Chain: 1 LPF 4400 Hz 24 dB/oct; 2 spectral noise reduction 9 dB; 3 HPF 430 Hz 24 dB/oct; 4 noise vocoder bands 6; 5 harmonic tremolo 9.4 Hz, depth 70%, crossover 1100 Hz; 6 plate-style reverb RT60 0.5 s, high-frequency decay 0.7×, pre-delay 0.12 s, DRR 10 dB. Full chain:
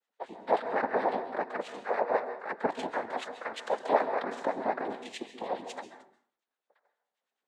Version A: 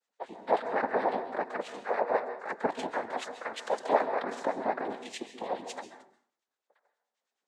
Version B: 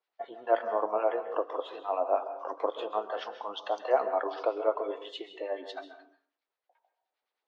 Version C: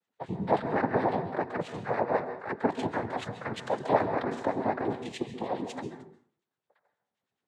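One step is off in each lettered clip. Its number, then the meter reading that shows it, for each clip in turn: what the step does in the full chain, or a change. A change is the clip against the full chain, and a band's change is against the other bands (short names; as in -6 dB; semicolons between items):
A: 1, 8 kHz band +4.0 dB; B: 4, 2 kHz band -7.0 dB; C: 3, 125 Hz band +17.0 dB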